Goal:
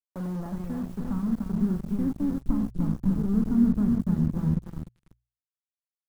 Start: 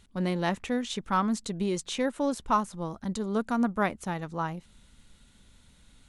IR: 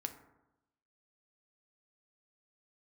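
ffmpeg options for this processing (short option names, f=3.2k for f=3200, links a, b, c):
-filter_complex "[1:a]atrim=start_sample=2205,atrim=end_sample=3528[a];[0:a][a]afir=irnorm=-1:irlink=0,acrossover=split=260[b][c];[c]acompressor=threshold=-42dB:ratio=10[d];[b][d]amix=inputs=2:normalize=0,aecho=1:1:298|596|894|1192|1490|1788:0.562|0.281|0.141|0.0703|0.0351|0.0176,acrusher=bits=5:mix=0:aa=0.5,bandreject=f=60:t=h:w=6,bandreject=f=120:t=h:w=6,acrossover=split=1500[e][f];[f]aeval=exprs='(mod(473*val(0)+1,2)-1)/473':c=same[g];[e][g]amix=inputs=2:normalize=0,asubboost=boost=11.5:cutoff=200"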